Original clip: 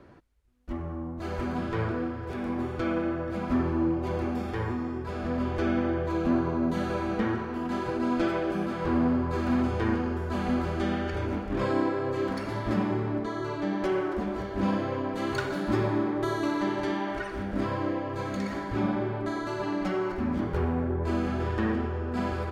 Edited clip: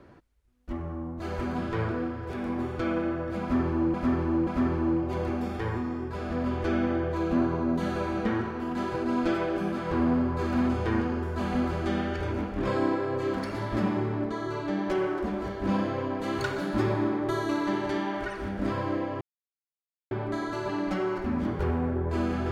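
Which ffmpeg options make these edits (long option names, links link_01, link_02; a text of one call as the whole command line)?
ffmpeg -i in.wav -filter_complex "[0:a]asplit=5[link_01][link_02][link_03][link_04][link_05];[link_01]atrim=end=3.942[link_06];[link_02]atrim=start=3.408:end=3.942[link_07];[link_03]atrim=start=3.408:end=18.15,asetpts=PTS-STARTPTS,afade=type=out:start_time=14.738:duration=0.004:curve=hsin[link_08];[link_04]atrim=start=18.15:end=19.05,asetpts=PTS-STARTPTS,volume=0[link_09];[link_05]atrim=start=19.05,asetpts=PTS-STARTPTS,afade=type=in:duration=0.004:curve=hsin[link_10];[link_06][link_07]acrossfade=duration=0.004:curve1=hsin:curve2=hsin[link_11];[link_08][link_09][link_10]concat=n=3:v=0:a=1[link_12];[link_11][link_12]acrossfade=duration=0.004:curve1=hsin:curve2=hsin" out.wav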